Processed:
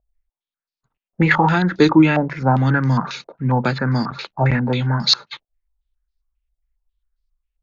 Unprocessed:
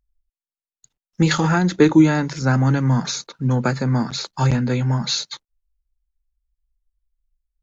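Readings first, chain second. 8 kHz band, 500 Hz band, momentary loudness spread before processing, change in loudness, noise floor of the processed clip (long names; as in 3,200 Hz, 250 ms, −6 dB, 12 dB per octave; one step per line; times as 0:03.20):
can't be measured, +1.5 dB, 9 LU, +1.5 dB, below −85 dBFS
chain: low-pass on a step sequencer 7.4 Hz 670–4,700 Hz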